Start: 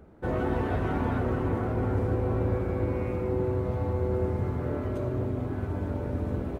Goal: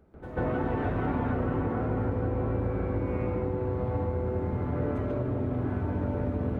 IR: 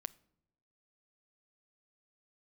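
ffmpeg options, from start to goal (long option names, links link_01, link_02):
-filter_complex "[0:a]acompressor=threshold=-29dB:ratio=6,asplit=2[link_01][link_02];[1:a]atrim=start_sample=2205,lowpass=2800,adelay=140[link_03];[link_02][link_03]afir=irnorm=-1:irlink=0,volume=16dB[link_04];[link_01][link_04]amix=inputs=2:normalize=0,volume=-8.5dB"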